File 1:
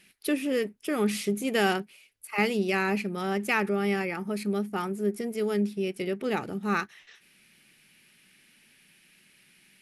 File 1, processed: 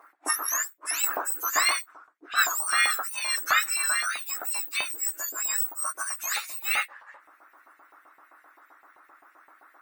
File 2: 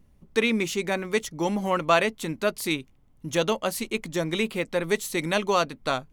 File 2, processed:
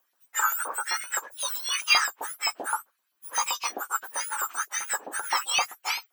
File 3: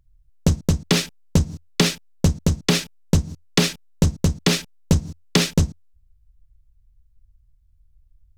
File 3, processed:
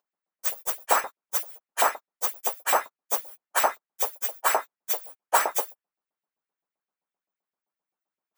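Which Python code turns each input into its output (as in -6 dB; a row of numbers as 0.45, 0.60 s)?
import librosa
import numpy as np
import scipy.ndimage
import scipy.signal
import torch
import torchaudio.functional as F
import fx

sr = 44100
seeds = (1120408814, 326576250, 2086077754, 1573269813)

y = fx.octave_mirror(x, sr, pivot_hz=1800.0)
y = fx.filter_lfo_highpass(y, sr, shape='saw_up', hz=7.7, low_hz=730.0, high_hz=2500.0, q=1.8)
y = y * 10.0 ** (-30 / 20.0) / np.sqrt(np.mean(np.square(y)))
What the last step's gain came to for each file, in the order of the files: +5.0, +1.0, +0.5 dB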